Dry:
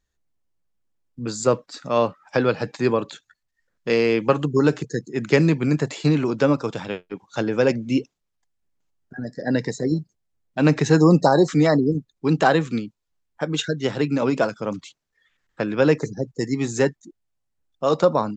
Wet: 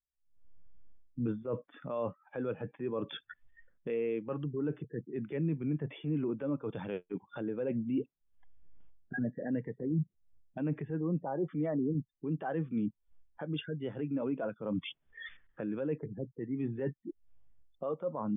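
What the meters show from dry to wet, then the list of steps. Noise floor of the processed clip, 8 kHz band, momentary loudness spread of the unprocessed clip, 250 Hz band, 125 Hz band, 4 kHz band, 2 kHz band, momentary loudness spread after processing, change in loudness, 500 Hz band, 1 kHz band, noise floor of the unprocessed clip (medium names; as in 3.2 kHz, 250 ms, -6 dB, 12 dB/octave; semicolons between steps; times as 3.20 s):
-78 dBFS, under -40 dB, 14 LU, -13.0 dB, -13.5 dB, -17.5 dB, -19.0 dB, 10 LU, -15.0 dB, -16.0 dB, -19.5 dB, -77 dBFS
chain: recorder AGC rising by 66 dB/s; brick-wall FIR low-pass 3.6 kHz; reverse; compression 6:1, threshold -26 dBFS, peak gain reduction 17.5 dB; reverse; transient shaper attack -5 dB, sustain 0 dB; spectral contrast expander 1.5:1; trim -7 dB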